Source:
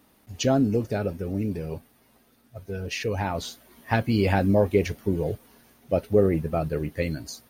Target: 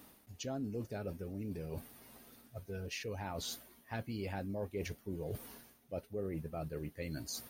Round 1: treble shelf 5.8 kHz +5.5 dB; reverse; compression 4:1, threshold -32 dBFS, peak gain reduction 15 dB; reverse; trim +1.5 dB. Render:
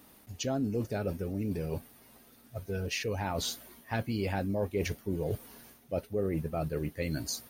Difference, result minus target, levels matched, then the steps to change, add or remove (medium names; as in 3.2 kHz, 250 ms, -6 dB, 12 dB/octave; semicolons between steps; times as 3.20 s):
compression: peak gain reduction -8 dB
change: compression 4:1, threshold -43 dBFS, peak gain reduction 23 dB